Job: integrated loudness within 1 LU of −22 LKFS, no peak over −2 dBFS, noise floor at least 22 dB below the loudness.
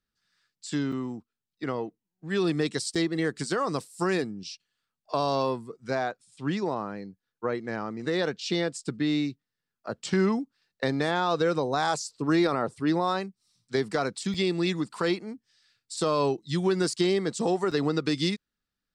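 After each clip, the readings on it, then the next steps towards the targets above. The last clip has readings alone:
number of dropouts 4; longest dropout 5.3 ms; integrated loudness −28.5 LKFS; sample peak −14.5 dBFS; target loudness −22.0 LKFS
→ repair the gap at 0:00.92/0:02.95/0:14.34/0:17.71, 5.3 ms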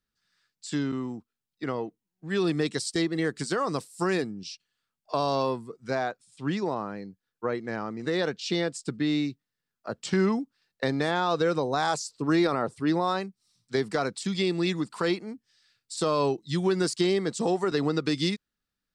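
number of dropouts 0; integrated loudness −28.5 LKFS; sample peak −14.5 dBFS; target loudness −22.0 LKFS
→ level +6.5 dB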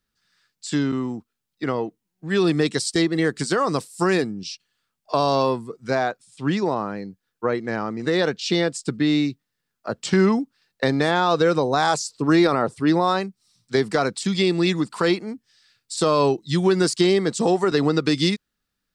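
integrated loudness −22.0 LKFS; sample peak −8.0 dBFS; background noise floor −80 dBFS

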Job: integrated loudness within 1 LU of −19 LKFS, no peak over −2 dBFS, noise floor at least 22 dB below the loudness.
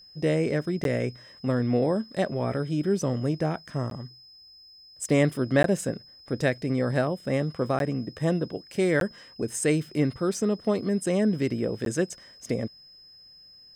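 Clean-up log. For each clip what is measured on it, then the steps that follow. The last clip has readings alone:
number of dropouts 6; longest dropout 12 ms; interfering tone 5,100 Hz; level of the tone −49 dBFS; integrated loudness −27.0 LKFS; sample peak −10.5 dBFS; target loudness −19.0 LKFS
→ repair the gap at 0:00.84/0:03.90/0:05.63/0:07.79/0:09.00/0:11.85, 12 ms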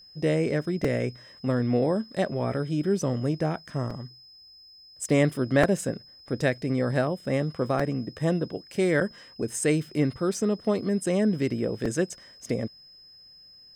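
number of dropouts 0; interfering tone 5,100 Hz; level of the tone −49 dBFS
→ notch filter 5,100 Hz, Q 30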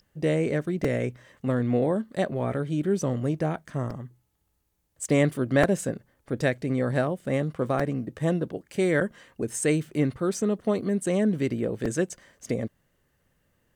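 interfering tone none found; integrated loudness −27.0 LKFS; sample peak −7.5 dBFS; target loudness −19.0 LKFS
→ level +8 dB
brickwall limiter −2 dBFS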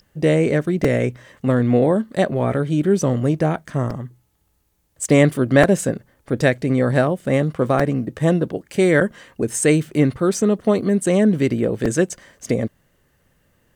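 integrated loudness −19.0 LKFS; sample peak −2.0 dBFS; background noise floor −64 dBFS

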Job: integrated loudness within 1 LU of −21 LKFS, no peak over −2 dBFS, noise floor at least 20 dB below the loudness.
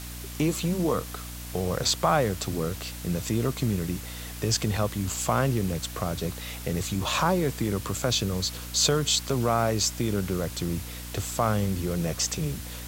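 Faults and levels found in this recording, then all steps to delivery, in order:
mains hum 60 Hz; hum harmonics up to 300 Hz; level of the hum −37 dBFS; background noise floor −38 dBFS; target noise floor −47 dBFS; integrated loudness −27.0 LKFS; sample peak −8.5 dBFS; target loudness −21.0 LKFS
→ hum removal 60 Hz, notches 5
broadband denoise 9 dB, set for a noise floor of −38 dBFS
level +6 dB

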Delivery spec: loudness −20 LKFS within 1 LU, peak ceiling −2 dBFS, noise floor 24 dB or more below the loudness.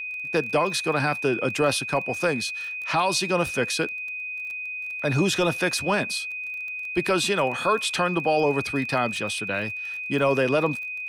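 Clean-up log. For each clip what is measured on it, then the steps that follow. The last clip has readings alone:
crackle rate 21 per second; interfering tone 2,500 Hz; level of the tone −30 dBFS; integrated loudness −24.5 LKFS; sample peak −11.5 dBFS; target loudness −20.0 LKFS
→ click removal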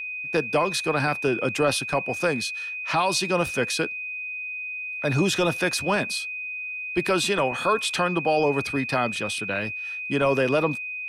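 crackle rate 0 per second; interfering tone 2,500 Hz; level of the tone −30 dBFS
→ notch filter 2,500 Hz, Q 30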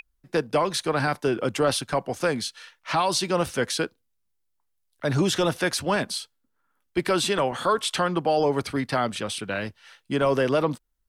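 interfering tone none found; integrated loudness −25.5 LKFS; sample peak −12.0 dBFS; target loudness −20.0 LKFS
→ level +5.5 dB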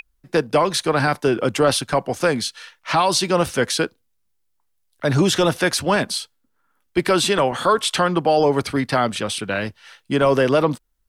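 integrated loudness −20.0 LKFS; sample peak −6.5 dBFS; background noise floor −68 dBFS

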